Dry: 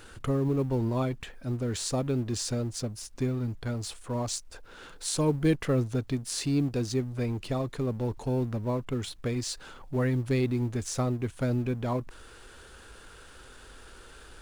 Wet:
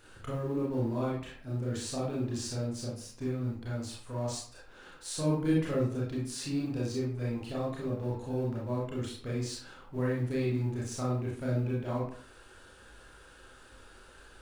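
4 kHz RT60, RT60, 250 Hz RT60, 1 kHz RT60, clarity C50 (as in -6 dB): 0.35 s, 0.55 s, 0.50 s, 0.55 s, 2.0 dB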